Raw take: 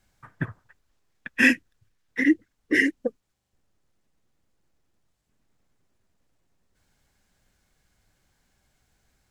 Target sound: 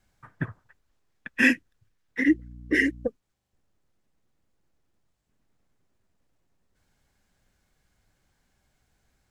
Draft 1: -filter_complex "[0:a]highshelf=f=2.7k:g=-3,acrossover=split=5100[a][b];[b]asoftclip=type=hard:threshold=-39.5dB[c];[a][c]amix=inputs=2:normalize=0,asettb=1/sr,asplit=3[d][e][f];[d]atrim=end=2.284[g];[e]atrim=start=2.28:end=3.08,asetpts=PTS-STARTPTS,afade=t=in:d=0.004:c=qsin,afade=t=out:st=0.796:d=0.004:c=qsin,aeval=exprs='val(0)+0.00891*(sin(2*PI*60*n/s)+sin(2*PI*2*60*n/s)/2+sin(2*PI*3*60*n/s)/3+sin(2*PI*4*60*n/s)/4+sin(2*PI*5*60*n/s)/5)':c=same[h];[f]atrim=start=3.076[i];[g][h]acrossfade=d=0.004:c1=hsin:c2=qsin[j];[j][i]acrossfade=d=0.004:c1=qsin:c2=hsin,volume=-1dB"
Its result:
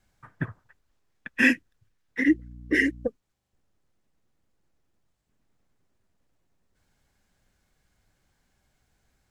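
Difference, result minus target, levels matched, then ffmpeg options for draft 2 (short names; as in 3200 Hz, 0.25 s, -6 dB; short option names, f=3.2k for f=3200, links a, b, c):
hard clip: distortion +17 dB
-filter_complex "[0:a]highshelf=f=2.7k:g=-3,acrossover=split=5100[a][b];[b]asoftclip=type=hard:threshold=-31dB[c];[a][c]amix=inputs=2:normalize=0,asettb=1/sr,asplit=3[d][e][f];[d]atrim=end=2.284[g];[e]atrim=start=2.28:end=3.08,asetpts=PTS-STARTPTS,afade=t=in:d=0.004:c=qsin,afade=t=out:st=0.796:d=0.004:c=qsin,aeval=exprs='val(0)+0.00891*(sin(2*PI*60*n/s)+sin(2*PI*2*60*n/s)/2+sin(2*PI*3*60*n/s)/3+sin(2*PI*4*60*n/s)/4+sin(2*PI*5*60*n/s)/5)':c=same[h];[f]atrim=start=3.076[i];[g][h]acrossfade=d=0.004:c1=hsin:c2=qsin[j];[j][i]acrossfade=d=0.004:c1=qsin:c2=hsin,volume=-1dB"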